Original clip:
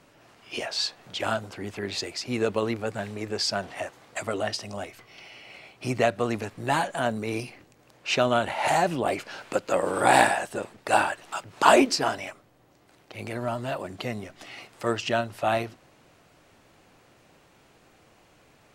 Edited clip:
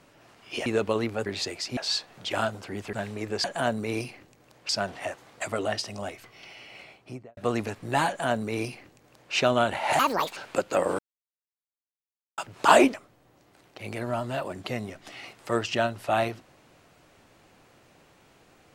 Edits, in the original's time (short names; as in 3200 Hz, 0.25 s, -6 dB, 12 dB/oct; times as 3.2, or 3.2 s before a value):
0.66–1.82 swap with 2.33–2.93
5.52–6.12 studio fade out
6.83–8.08 copy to 3.44
8.74–9.34 speed 159%
9.96–11.35 mute
11.91–12.28 cut